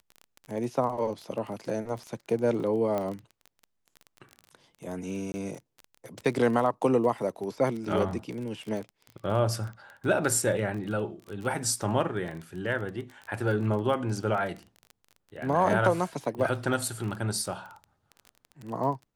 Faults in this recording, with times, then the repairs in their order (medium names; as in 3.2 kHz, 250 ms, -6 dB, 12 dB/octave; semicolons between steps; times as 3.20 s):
crackle 23 per s -34 dBFS
2.98 s: pop -18 dBFS
5.32–5.34 s: dropout 20 ms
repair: de-click; interpolate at 5.32 s, 20 ms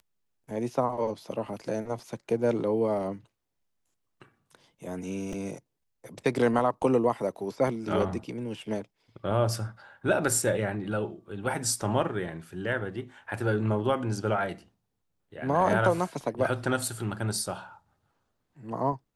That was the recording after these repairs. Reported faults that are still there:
nothing left